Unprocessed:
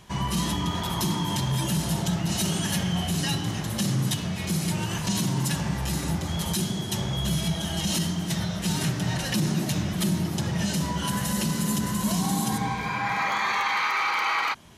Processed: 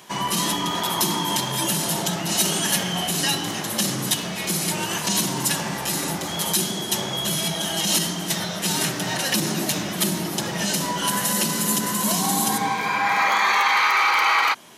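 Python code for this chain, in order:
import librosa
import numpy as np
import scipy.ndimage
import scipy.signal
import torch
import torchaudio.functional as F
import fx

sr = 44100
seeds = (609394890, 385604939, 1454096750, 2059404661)

y = scipy.signal.sosfilt(scipy.signal.butter(2, 290.0, 'highpass', fs=sr, output='sos'), x)
y = fx.high_shelf(y, sr, hz=12000.0, db=9.0)
y = y * librosa.db_to_amplitude(6.5)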